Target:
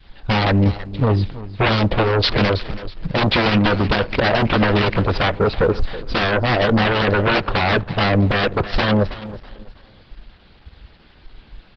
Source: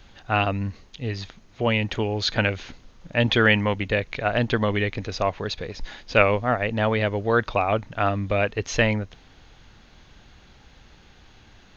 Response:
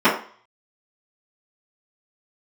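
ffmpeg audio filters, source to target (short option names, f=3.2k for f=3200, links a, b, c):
-filter_complex "[0:a]afwtdn=0.0355,adynamicequalizer=threshold=0.0141:dfrequency=540:dqfactor=1.6:tfrequency=540:tqfactor=1.6:attack=5:release=100:ratio=0.375:range=4:mode=boostabove:tftype=bell,acompressor=threshold=-25dB:ratio=2.5,aeval=exprs='0.266*sin(PI/2*5.62*val(0)/0.266)':c=same,aecho=1:1:325|650|975:0.158|0.0491|0.0152,asplit=2[a][b];[1:a]atrim=start_sample=2205[c];[b][c]afir=irnorm=-1:irlink=0,volume=-42dB[d];[a][d]amix=inputs=2:normalize=0,aresample=11025,aresample=44100" -ar 48000 -c:a libopus -b:a 10k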